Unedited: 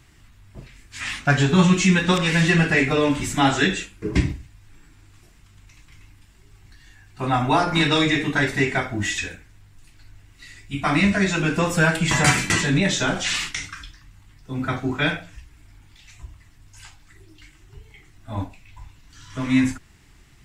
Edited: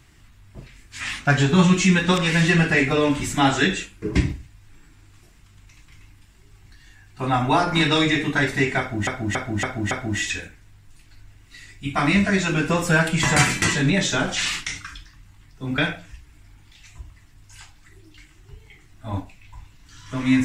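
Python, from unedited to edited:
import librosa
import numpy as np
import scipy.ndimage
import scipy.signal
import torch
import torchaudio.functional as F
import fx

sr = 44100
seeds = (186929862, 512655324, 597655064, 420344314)

y = fx.edit(x, sr, fx.repeat(start_s=8.79, length_s=0.28, count=5),
    fx.cut(start_s=14.66, length_s=0.36), tone=tone)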